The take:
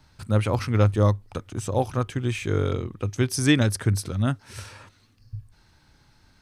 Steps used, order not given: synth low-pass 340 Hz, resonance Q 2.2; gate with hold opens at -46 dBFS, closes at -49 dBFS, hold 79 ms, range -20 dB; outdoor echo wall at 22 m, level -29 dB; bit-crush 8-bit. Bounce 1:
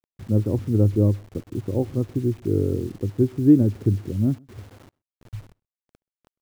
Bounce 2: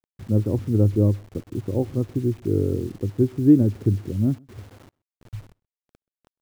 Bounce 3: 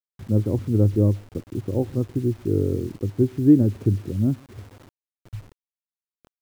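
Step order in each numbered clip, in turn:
synth low-pass > bit-crush > outdoor echo > gate with hold; synth low-pass > bit-crush > gate with hold > outdoor echo; outdoor echo > gate with hold > synth low-pass > bit-crush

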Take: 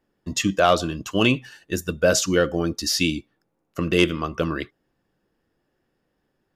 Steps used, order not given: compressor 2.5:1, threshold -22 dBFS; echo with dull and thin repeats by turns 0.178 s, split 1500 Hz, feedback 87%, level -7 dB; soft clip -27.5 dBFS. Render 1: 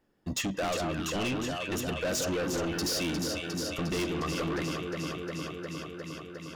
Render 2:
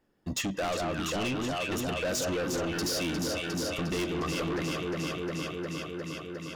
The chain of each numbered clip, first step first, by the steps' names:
compressor > echo with dull and thin repeats by turns > soft clip; echo with dull and thin repeats by turns > compressor > soft clip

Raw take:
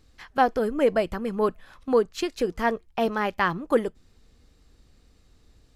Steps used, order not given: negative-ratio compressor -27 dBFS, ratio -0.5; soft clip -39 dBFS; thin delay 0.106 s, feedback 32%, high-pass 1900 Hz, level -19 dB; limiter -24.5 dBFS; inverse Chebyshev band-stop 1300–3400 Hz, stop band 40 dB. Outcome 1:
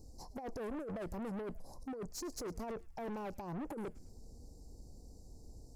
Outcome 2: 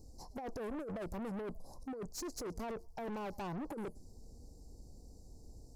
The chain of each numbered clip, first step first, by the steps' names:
negative-ratio compressor > limiter > inverse Chebyshev band-stop > soft clip > thin delay; inverse Chebyshev band-stop > negative-ratio compressor > thin delay > limiter > soft clip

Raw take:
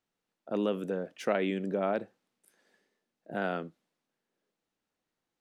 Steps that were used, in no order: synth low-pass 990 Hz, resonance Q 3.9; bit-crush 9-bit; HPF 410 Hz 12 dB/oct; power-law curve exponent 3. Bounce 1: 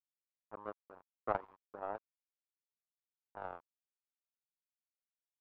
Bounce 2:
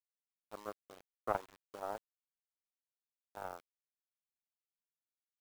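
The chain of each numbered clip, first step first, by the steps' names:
HPF > power-law curve > bit-crush > synth low-pass; HPF > power-law curve > synth low-pass > bit-crush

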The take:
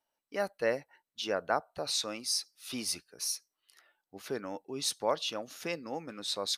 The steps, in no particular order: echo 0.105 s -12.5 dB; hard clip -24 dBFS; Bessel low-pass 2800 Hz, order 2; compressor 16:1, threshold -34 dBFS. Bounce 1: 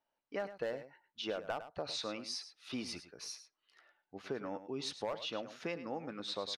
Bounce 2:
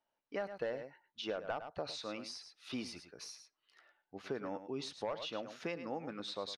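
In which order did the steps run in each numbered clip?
Bessel low-pass > hard clip > compressor > echo; hard clip > echo > compressor > Bessel low-pass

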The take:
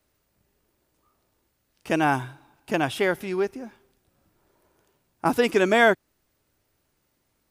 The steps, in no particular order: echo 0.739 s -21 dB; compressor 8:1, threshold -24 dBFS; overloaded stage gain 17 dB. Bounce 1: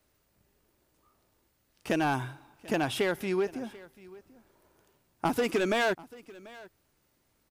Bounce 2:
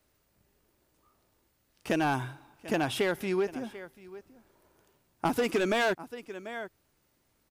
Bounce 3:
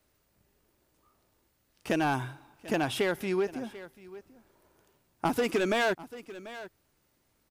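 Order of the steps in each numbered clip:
overloaded stage > compressor > echo; echo > overloaded stage > compressor; overloaded stage > echo > compressor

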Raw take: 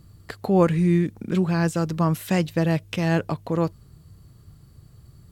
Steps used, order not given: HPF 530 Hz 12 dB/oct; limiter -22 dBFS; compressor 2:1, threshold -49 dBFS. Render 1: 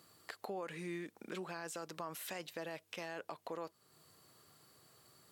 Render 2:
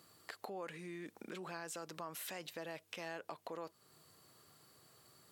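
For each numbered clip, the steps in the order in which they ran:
HPF > limiter > compressor; limiter > HPF > compressor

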